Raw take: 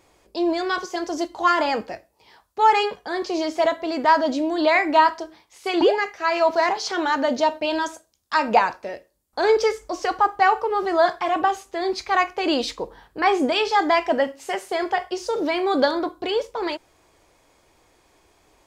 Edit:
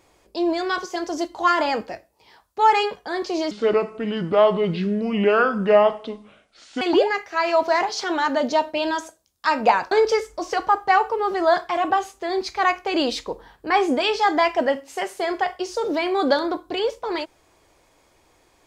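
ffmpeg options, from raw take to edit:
-filter_complex "[0:a]asplit=4[s0][s1][s2][s3];[s0]atrim=end=3.514[s4];[s1]atrim=start=3.51:end=5.69,asetpts=PTS-STARTPTS,asetrate=29106,aresample=44100[s5];[s2]atrim=start=5.686:end=8.792[s6];[s3]atrim=start=9.428[s7];[s4][s5]acrossfade=d=0.004:c1=hsin:c2=hsin[s8];[s8][s6]acrossfade=d=0.004:c1=hsin:c2=hsin[s9];[s9][s7]acrossfade=d=0.004:c1=hsin:c2=hsin"

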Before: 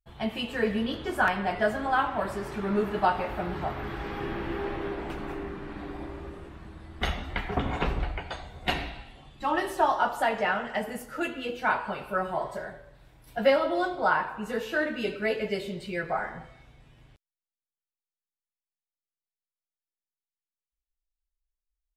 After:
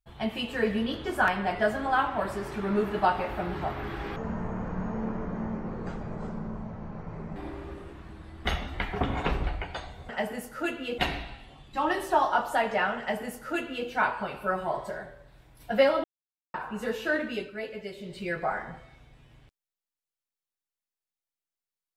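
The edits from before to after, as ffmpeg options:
-filter_complex "[0:a]asplit=9[s0][s1][s2][s3][s4][s5][s6][s7][s8];[s0]atrim=end=4.164[s9];[s1]atrim=start=4.16:end=5.92,asetpts=PTS-STARTPTS,asetrate=24255,aresample=44100[s10];[s2]atrim=start=5.916:end=8.652[s11];[s3]atrim=start=10.658:end=11.552[s12];[s4]atrim=start=8.648:end=13.71,asetpts=PTS-STARTPTS,afade=t=out:st=5.058:d=0.004:c=hsin[s13];[s5]atrim=start=13.71:end=14.21,asetpts=PTS-STARTPTS,volume=0[s14];[s6]atrim=start=14.21:end=15.19,asetpts=PTS-STARTPTS,afade=t=in:d=0.004:c=hsin,afade=t=out:st=0.71:d=0.27:silence=0.375837[s15];[s7]atrim=start=15.19:end=15.64,asetpts=PTS-STARTPTS,volume=0.376[s16];[s8]atrim=start=15.64,asetpts=PTS-STARTPTS,afade=t=in:d=0.27:silence=0.375837[s17];[s9][s10]acrossfade=d=0.004:c1=hsin:c2=hsin[s18];[s18][s11]acrossfade=d=0.004:c1=hsin:c2=hsin[s19];[s19][s12]acrossfade=d=0.004:c1=hsin:c2=hsin[s20];[s13][s14][s15][s16][s17]concat=n=5:v=0:a=1[s21];[s20][s21]acrossfade=d=0.004:c1=hsin:c2=hsin"

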